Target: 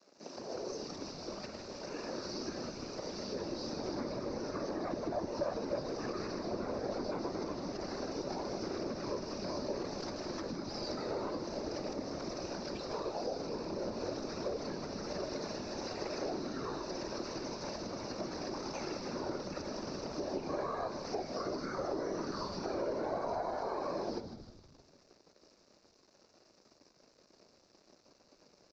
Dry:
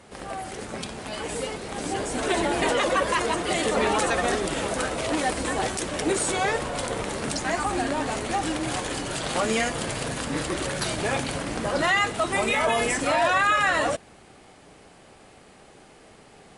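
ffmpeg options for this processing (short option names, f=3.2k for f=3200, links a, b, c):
-filter_complex "[0:a]acrossover=split=3400[a][b];[b]acompressor=threshold=-41dB:ratio=4:attack=1:release=60[c];[a][c]amix=inputs=2:normalize=0,asetrate=25442,aresample=44100,afftfilt=real='hypot(re,im)*cos(2*PI*random(0))':imag='hypot(re,im)*sin(2*PI*random(1))':win_size=512:overlap=0.75,aresample=16000,aeval=exprs='sgn(val(0))*max(abs(val(0))-0.0015,0)':c=same,aresample=44100,equalizer=f=3.3k:w=1.9:g=-14.5,acompressor=threshold=-35dB:ratio=6,highpass=f=190:w=0.5412,highpass=f=190:w=1.3066,equalizer=f=360:t=q:w=4:g=4,equalizer=f=590:t=q:w=4:g=9,equalizer=f=3.2k:t=q:w=4:g=-7,lowpass=f=5.1k:w=0.5412,lowpass=f=5.1k:w=1.3066,asplit=7[d][e][f][g][h][i][j];[e]adelay=156,afreqshift=-120,volume=-9dB[k];[f]adelay=312,afreqshift=-240,volume=-14.5dB[l];[g]adelay=468,afreqshift=-360,volume=-20dB[m];[h]adelay=624,afreqshift=-480,volume=-25.5dB[n];[i]adelay=780,afreqshift=-600,volume=-31.1dB[o];[j]adelay=936,afreqshift=-720,volume=-36.6dB[p];[d][k][l][m][n][o][p]amix=inputs=7:normalize=0,aexciter=amount=5.4:drive=6.3:freq=2.8k,volume=-2.5dB"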